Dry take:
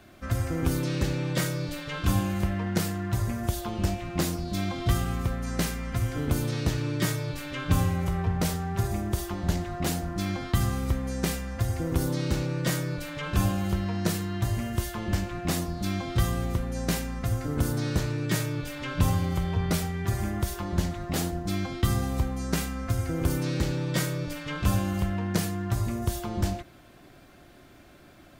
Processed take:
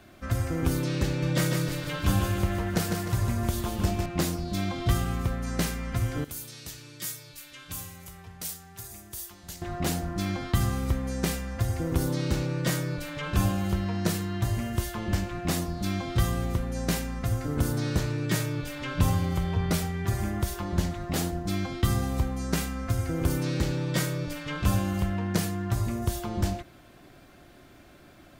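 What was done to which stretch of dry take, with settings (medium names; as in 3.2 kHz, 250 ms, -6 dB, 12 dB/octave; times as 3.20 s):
1.07–4.06 s: feedback delay 152 ms, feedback 46%, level -5 dB
6.24–9.62 s: pre-emphasis filter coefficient 0.9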